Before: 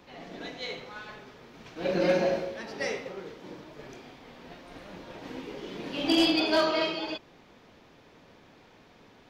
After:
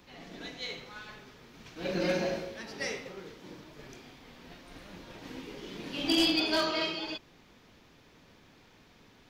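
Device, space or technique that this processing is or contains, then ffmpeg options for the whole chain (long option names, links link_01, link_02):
smiley-face EQ: -af "lowshelf=frequency=81:gain=5.5,equalizer=frequency=620:width_type=o:width=1.5:gain=-4.5,highshelf=frequency=5200:gain=7,volume=-2.5dB"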